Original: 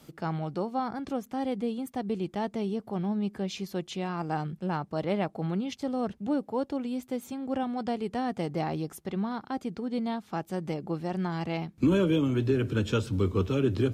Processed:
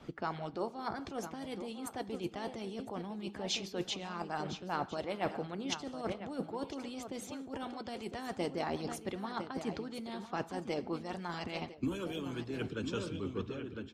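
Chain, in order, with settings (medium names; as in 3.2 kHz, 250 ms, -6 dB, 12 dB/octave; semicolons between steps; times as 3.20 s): fade out at the end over 2.57 s; treble shelf 5.5 kHz +8 dB; on a send: delay 1006 ms -12 dB; on the sum: gated-style reverb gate 300 ms falling, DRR 10.5 dB; level-controlled noise filter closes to 2.4 kHz, open at -23 dBFS; reverse; compression 6:1, threshold -35 dBFS, peak gain reduction 14 dB; reverse; harmonic-percussive split harmonic -13 dB; trim +7 dB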